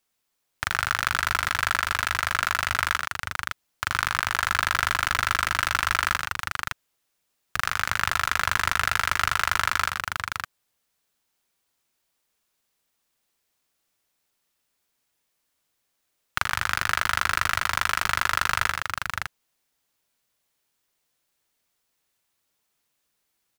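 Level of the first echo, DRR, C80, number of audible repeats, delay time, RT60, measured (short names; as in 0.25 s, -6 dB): -10.0 dB, none, none, 2, 97 ms, none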